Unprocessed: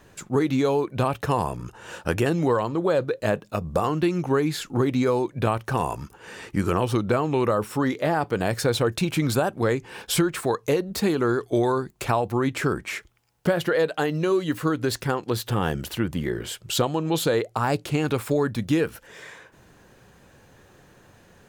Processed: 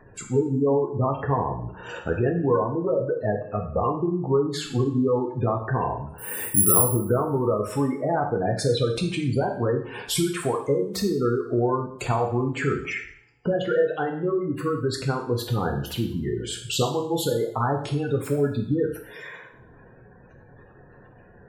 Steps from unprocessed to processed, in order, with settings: spectral gate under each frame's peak -15 dB strong; in parallel at 0 dB: compressor, threshold -32 dBFS, peak gain reduction 14.5 dB; 6.18–6.82 on the sum: careless resampling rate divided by 4×, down filtered, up zero stuff; two-slope reverb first 0.59 s, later 1.6 s, from -27 dB, DRR 1 dB; gain -4.5 dB

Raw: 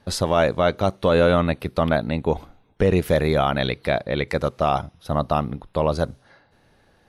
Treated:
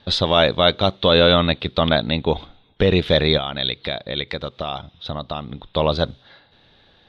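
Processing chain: 3.37–5.65 compressor 5:1, threshold -27 dBFS, peak gain reduction 10.5 dB; synth low-pass 3600 Hz, resonance Q 7.3; gain +1.5 dB

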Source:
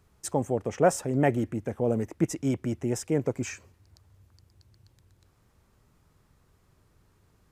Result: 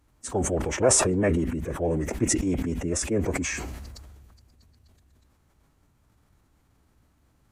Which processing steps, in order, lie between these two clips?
notch 5100 Hz, Q 21; formant-preserving pitch shift -6 st; sustainer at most 28 dB/s

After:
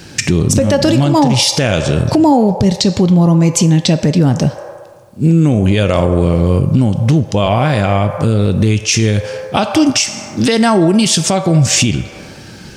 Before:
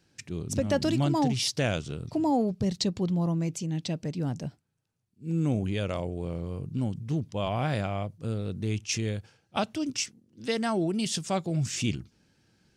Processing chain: on a send at -8 dB: steep high-pass 470 Hz 48 dB/oct + reverb RT60 1.4 s, pre-delay 3 ms; on the sum: compressor 6:1, threshold -40 dBFS, peak gain reduction 19 dB; maximiser +33 dB; gain -1 dB

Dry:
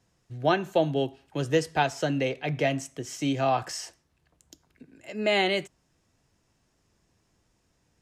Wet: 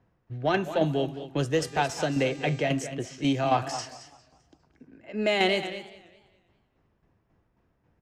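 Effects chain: low-pass opened by the level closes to 1700 Hz, open at -24.5 dBFS; tremolo saw down 3.7 Hz, depth 60%; in parallel at -4 dB: soft clip -23.5 dBFS, distortion -13 dB; 1.54–2.62 on the sum: buzz 400 Hz, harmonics 20, -51 dBFS -3 dB/oct; on a send: echo 0.223 s -12.5 dB; on the sum: warbling echo 0.202 s, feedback 39%, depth 196 cents, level -17.5 dB

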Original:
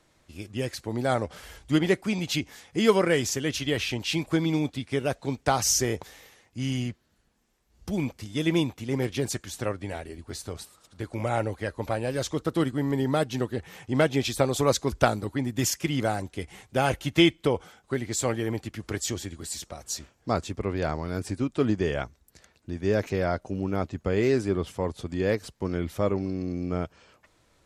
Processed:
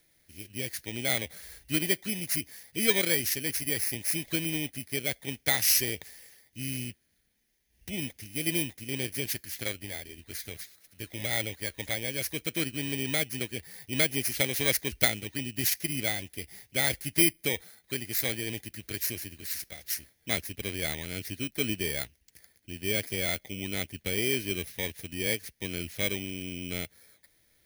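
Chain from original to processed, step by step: FFT order left unsorted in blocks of 16 samples; resonant high shelf 1500 Hz +8.5 dB, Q 3; gain -8 dB

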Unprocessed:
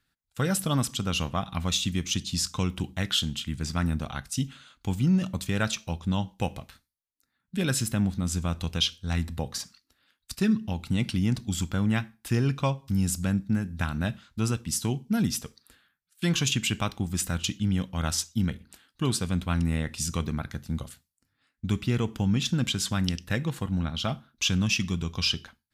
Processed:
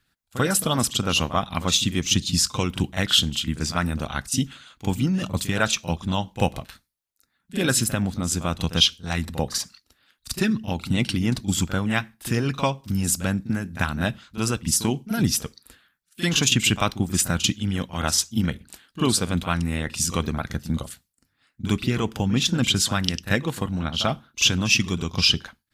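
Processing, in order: harmonic-percussive split percussive +9 dB; pre-echo 41 ms -13 dB; gain -1 dB

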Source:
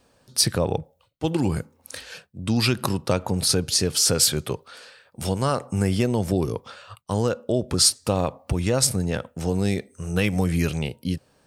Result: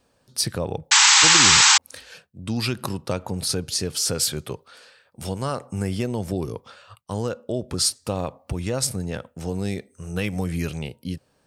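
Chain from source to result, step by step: painted sound noise, 0.91–1.78, 780–8100 Hz -10 dBFS; gain -4 dB

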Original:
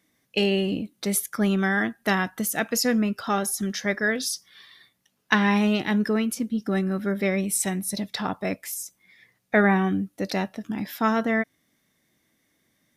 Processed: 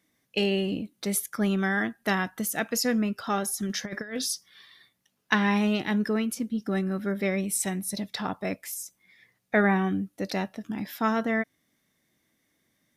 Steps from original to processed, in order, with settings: 3.66–4.33 negative-ratio compressor -28 dBFS, ratio -0.5; gain -3 dB

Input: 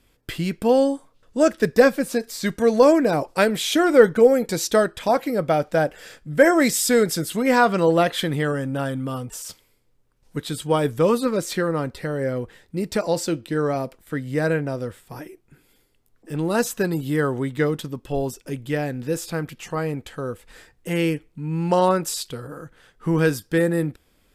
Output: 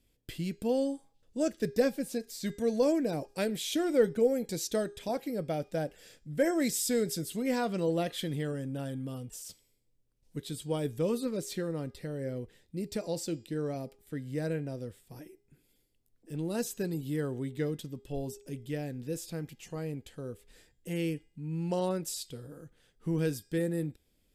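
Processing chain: bell 1200 Hz -12.5 dB 1.5 oct; de-hum 407.9 Hz, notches 20; gain -9 dB

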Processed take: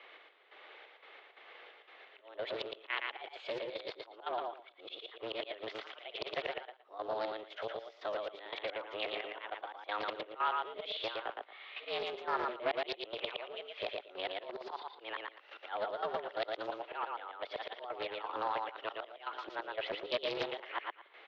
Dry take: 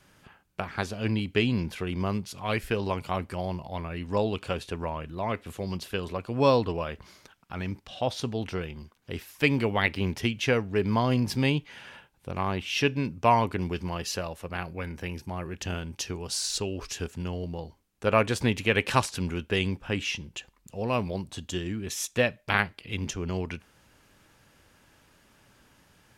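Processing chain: whole clip reversed; de-esser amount 70%; high shelf 2300 Hz +4 dB; auto swell 0.474 s; compressor 4:1, threshold -37 dBFS, peak gain reduction 15.5 dB; varispeed +23%; step gate "x..xx.x.xx." 88 bpm -12 dB; mistuned SSB +100 Hz 340–3300 Hz; feedback echo 0.115 s, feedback 18%, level -3 dB; Doppler distortion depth 0.24 ms; gain +6.5 dB

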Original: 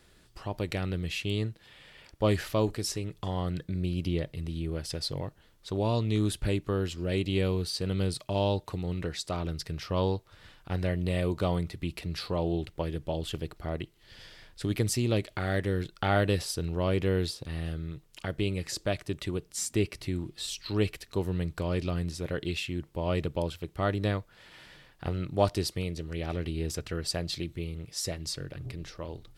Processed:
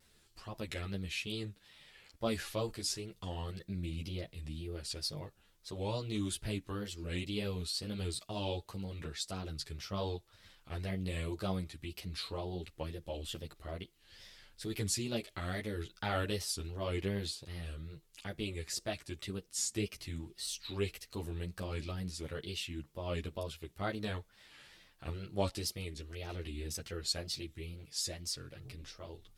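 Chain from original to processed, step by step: high shelf 2700 Hz +8.5 dB; wow and flutter 130 cents; ensemble effect; gain -6.5 dB

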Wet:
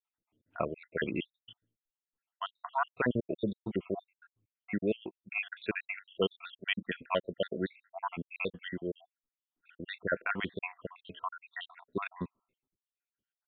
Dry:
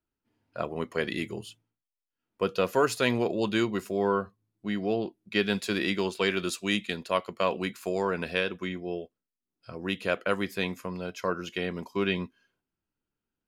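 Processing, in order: random spectral dropouts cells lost 77%; downsampling 8000 Hz

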